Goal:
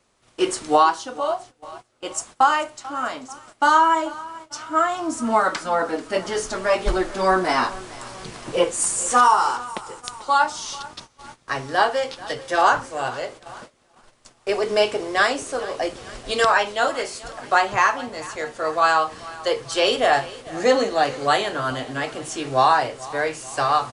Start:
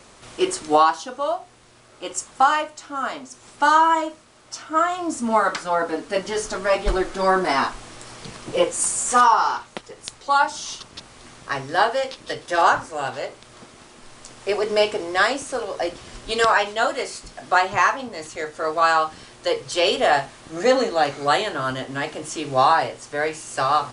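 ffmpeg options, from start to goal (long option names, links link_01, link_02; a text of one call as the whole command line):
ffmpeg -i in.wav -af "aecho=1:1:439|878|1317|1756:0.112|0.0606|0.0327|0.0177,agate=range=-17dB:threshold=-39dB:ratio=16:detection=peak" out.wav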